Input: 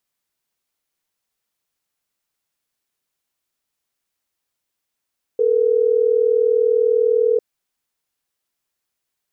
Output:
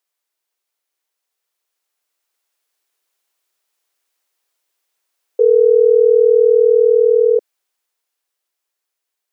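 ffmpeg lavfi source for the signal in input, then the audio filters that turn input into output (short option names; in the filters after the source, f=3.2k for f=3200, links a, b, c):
-f lavfi -i "aevalsrc='0.158*(sin(2*PI*440*t)+sin(2*PI*480*t))*clip(min(mod(t,6),2-mod(t,6))/0.005,0,1)':d=3.12:s=44100"
-af "highpass=f=350:w=0.5412,highpass=f=350:w=1.3066,dynaudnorm=f=340:g=13:m=7dB"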